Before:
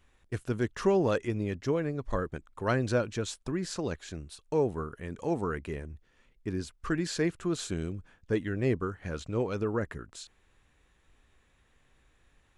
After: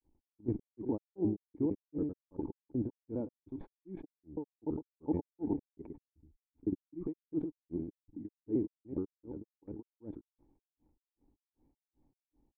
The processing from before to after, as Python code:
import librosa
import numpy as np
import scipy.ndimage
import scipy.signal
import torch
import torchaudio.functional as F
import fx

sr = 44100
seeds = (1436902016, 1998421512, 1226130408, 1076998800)

y = fx.block_reorder(x, sr, ms=147.0, group=2)
y = fx.level_steps(y, sr, step_db=17)
y = fx.formant_cascade(y, sr, vowel='u')
y = y + 10.0 ** (-9.0 / 20.0) * np.pad(y, (int(109 * sr / 1000.0), 0))[:len(y)]
y = fx.granulator(y, sr, seeds[0], grain_ms=214.0, per_s=2.6, spray_ms=100.0, spread_st=0)
y = fx.sustainer(y, sr, db_per_s=80.0)
y = y * librosa.db_to_amplitude(12.5)